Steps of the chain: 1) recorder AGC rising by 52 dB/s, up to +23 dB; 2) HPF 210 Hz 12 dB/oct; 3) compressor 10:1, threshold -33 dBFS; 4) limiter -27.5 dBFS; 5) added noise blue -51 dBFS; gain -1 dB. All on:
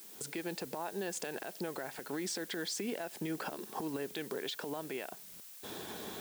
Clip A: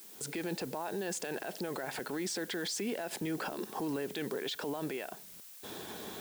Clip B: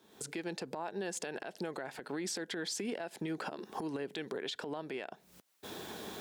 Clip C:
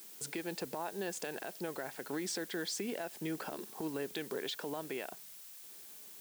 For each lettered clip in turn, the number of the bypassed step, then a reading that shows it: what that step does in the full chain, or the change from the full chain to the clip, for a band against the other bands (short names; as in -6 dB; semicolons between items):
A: 3, mean gain reduction 11.0 dB; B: 5, crest factor change -1.5 dB; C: 1, momentary loudness spread change +5 LU